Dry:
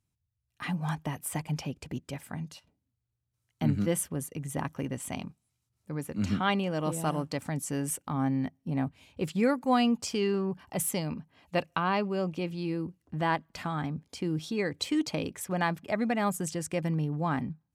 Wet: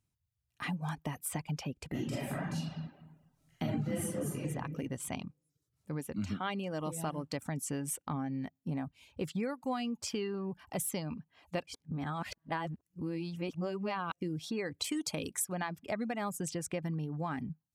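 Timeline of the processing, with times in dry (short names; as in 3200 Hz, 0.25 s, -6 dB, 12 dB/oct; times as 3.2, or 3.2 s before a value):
1.9–4.46 reverb throw, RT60 1.3 s, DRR -10.5 dB
11.67–14.21 reverse
14.84–15.55 bell 10000 Hz +14.5 dB 1.6 oct
whole clip: compressor 5:1, threshold -31 dBFS; reverb removal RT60 0.52 s; gain -1 dB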